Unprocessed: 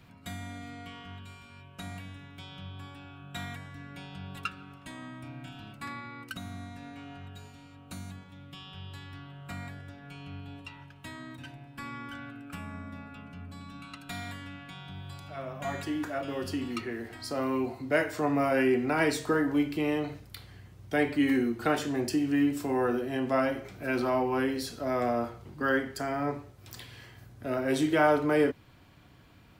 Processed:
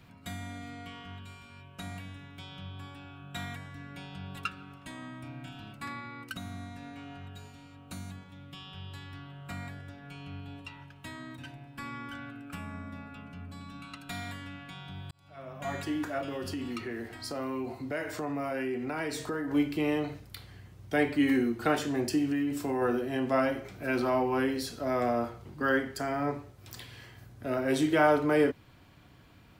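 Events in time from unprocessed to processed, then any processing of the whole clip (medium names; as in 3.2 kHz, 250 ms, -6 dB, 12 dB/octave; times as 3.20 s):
15.11–15.77 s: fade in
16.28–19.51 s: compression 3:1, threshold -32 dBFS
22.32–22.82 s: compression, threshold -26 dBFS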